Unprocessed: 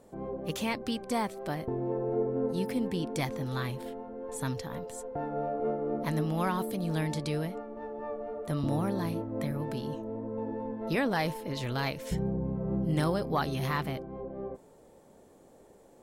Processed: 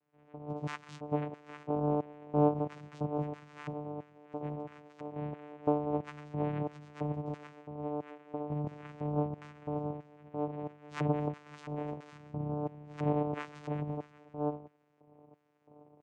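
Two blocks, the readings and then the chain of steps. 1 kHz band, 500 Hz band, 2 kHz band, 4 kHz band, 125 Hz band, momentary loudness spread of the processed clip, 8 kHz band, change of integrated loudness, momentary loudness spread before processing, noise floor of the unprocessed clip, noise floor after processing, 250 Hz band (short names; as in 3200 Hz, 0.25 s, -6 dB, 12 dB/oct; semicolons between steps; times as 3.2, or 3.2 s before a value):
-3.0 dB, -3.5 dB, -11.5 dB, -17.0 dB, -3.5 dB, 12 LU, under -15 dB, -4.0 dB, 10 LU, -57 dBFS, -66 dBFS, -4.0 dB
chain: AGC gain up to 7 dB; on a send: split-band echo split 350 Hz, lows 0.233 s, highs 0.133 s, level -15 dB; on the sum: painted sound fall, 4.98–5.75, 490–2300 Hz -40 dBFS; chorus voices 4, 0.28 Hz, delay 14 ms, depth 4.6 ms; LFO band-pass square 1.5 Hz 410–2100 Hz; vocoder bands 4, saw 148 Hz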